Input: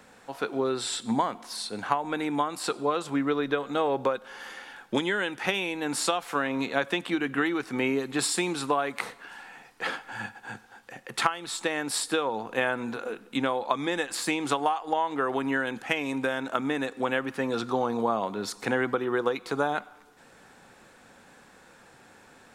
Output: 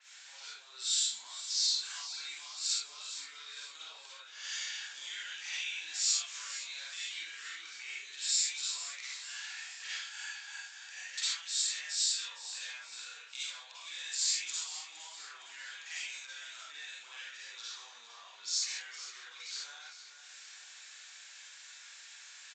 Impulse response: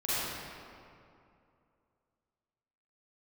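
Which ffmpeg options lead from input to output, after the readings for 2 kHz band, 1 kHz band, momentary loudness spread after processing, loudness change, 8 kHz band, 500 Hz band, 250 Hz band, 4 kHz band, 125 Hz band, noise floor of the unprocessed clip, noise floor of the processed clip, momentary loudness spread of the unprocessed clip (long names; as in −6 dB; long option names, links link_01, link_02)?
−11.5 dB, −25.5 dB, 19 LU, −7.0 dB, +3.0 dB, below −35 dB, below −40 dB, +1.0 dB, below −40 dB, −55 dBFS, −53 dBFS, 9 LU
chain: -filter_complex "[0:a]flanger=delay=7.4:depth=8.1:regen=-76:speed=1.2:shape=triangular,acompressor=threshold=-45dB:ratio=6,aresample=16000,asoftclip=type=hard:threshold=-38dB,aresample=44100,crystalizer=i=4:c=0,asuperpass=centerf=4900:order=4:qfactor=0.6,aecho=1:1:461|922|1383|1844|2305|2766|3227:0.237|0.14|0.0825|0.0487|0.0287|0.017|0.01[link_01];[1:a]atrim=start_sample=2205,afade=type=out:start_time=0.18:duration=0.01,atrim=end_sample=8379,asetrate=40131,aresample=44100[link_02];[link_01][link_02]afir=irnorm=-1:irlink=0,adynamicequalizer=threshold=0.00355:dfrequency=4700:dqfactor=0.7:tfrequency=4700:tqfactor=0.7:attack=5:release=100:ratio=0.375:range=3.5:mode=boostabove:tftype=highshelf"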